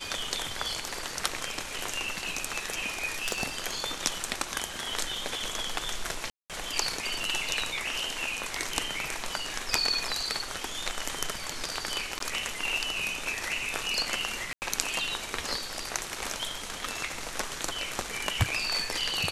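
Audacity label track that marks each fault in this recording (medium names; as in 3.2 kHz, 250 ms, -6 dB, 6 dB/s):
3.280000	3.430000	clipped -20 dBFS
6.300000	6.500000	dropout 197 ms
12.190000	12.200000	dropout 13 ms
14.530000	14.620000	dropout 89 ms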